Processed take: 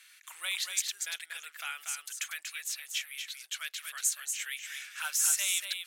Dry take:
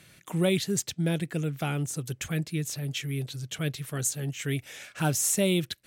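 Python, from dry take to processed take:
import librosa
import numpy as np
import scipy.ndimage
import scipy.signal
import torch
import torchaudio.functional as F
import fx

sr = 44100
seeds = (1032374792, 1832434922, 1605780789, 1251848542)

p1 = scipy.signal.sosfilt(scipy.signal.butter(4, 1300.0, 'highpass', fs=sr, output='sos'), x)
y = p1 + fx.echo_single(p1, sr, ms=237, db=-6.0, dry=0)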